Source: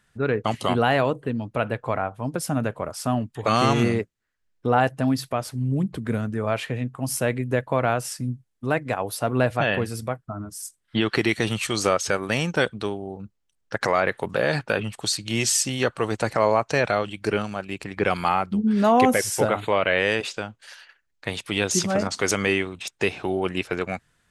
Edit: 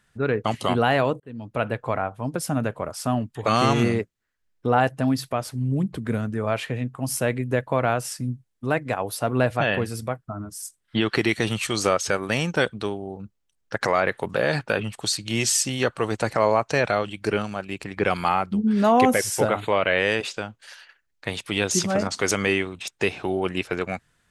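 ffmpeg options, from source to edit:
-filter_complex "[0:a]asplit=2[s0][s1];[s0]atrim=end=1.2,asetpts=PTS-STARTPTS,afade=t=out:st=1.196:d=0.004:c=hsin[s2];[s1]atrim=start=1.2,asetpts=PTS-STARTPTS,afade=t=in:d=0.42[s3];[s2][s3]concat=n=2:v=0:a=1"

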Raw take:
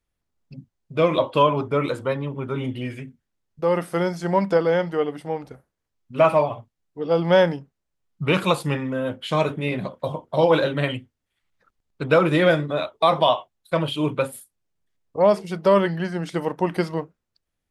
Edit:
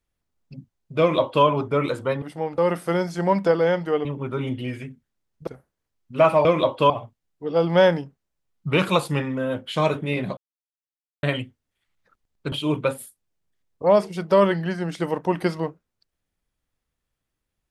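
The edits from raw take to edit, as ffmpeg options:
-filter_complex "[0:a]asplit=10[s0][s1][s2][s3][s4][s5][s6][s7][s8][s9];[s0]atrim=end=2.222[s10];[s1]atrim=start=5.108:end=5.472[s11];[s2]atrim=start=3.638:end=5.112[s12];[s3]atrim=start=2.218:end=3.642[s13];[s4]atrim=start=5.468:end=6.452[s14];[s5]atrim=start=0.998:end=1.452[s15];[s6]atrim=start=6.448:end=9.92,asetpts=PTS-STARTPTS,afade=t=out:st=3.468:d=0.004:c=hsin[s16];[s7]atrim=start=9.92:end=10.78,asetpts=PTS-STARTPTS,volume=0[s17];[s8]atrim=start=10.78:end=12.072,asetpts=PTS-STARTPTS,afade=t=in:d=0.004:c=hsin[s18];[s9]atrim=start=13.858[s19];[s10][s11]acrossfade=d=0.004:c1=hsin:c2=hsin[s20];[s20][s12]acrossfade=d=0.004:c1=hsin:c2=hsin[s21];[s21][s13]acrossfade=d=0.004:c1=hsin:c2=hsin[s22];[s22][s14]acrossfade=d=0.004:c1=hsin:c2=hsin[s23];[s23][s15]acrossfade=d=0.004:c1=hsin:c2=hsin[s24];[s16][s17][s18]concat=n=3:v=0:a=1[s25];[s24][s25]acrossfade=d=0.004:c1=hsin:c2=hsin[s26];[s26][s19]acrossfade=d=0.004:c1=hsin:c2=hsin"

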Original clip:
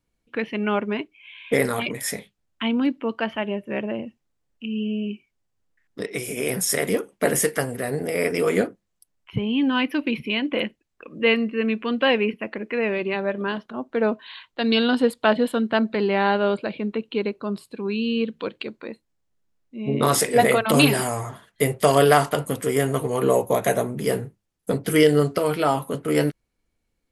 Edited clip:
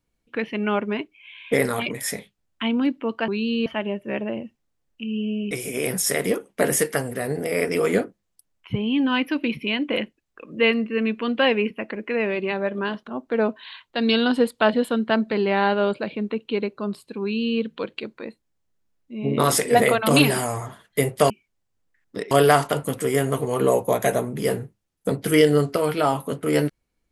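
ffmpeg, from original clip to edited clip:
-filter_complex "[0:a]asplit=6[s0][s1][s2][s3][s4][s5];[s0]atrim=end=3.282[s6];[s1]atrim=start=17.848:end=18.232[s7];[s2]atrim=start=3.278:end=5.132[s8];[s3]atrim=start=6.138:end=21.932[s9];[s4]atrim=start=5.128:end=6.142[s10];[s5]atrim=start=21.928[s11];[s6][s7]acrossfade=d=0.004:c1=hsin:c2=hsin[s12];[s12][s8]acrossfade=d=0.004:c1=hsin:c2=hsin[s13];[s13][s9]acrossfade=d=0.004:c1=hsin:c2=hsin[s14];[s14][s10]acrossfade=d=0.004:c1=hsin:c2=hsin[s15];[s15][s11]acrossfade=d=0.004:c1=hsin:c2=hsin"

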